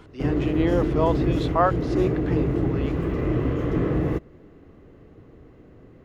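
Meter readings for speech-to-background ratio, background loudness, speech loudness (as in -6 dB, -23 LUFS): -1.5 dB, -25.0 LUFS, -26.5 LUFS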